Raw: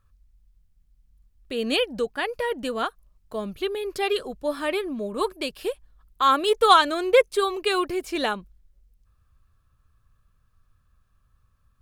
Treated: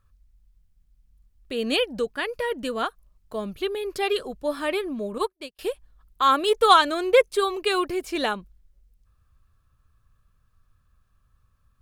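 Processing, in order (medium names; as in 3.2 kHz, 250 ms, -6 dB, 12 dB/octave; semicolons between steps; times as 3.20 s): 2.02–2.76 s: peaking EQ 770 Hz -9.5 dB 0.25 oct; 5.18–5.59 s: upward expansion 2.5:1, over -44 dBFS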